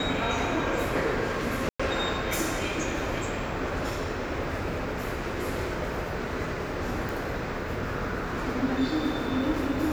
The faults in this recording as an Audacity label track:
1.690000	1.790000	drop-out 105 ms
7.090000	7.090000	click

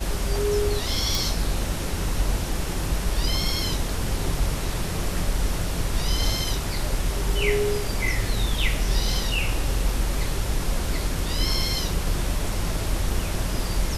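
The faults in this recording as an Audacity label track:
1.150000	1.150000	click

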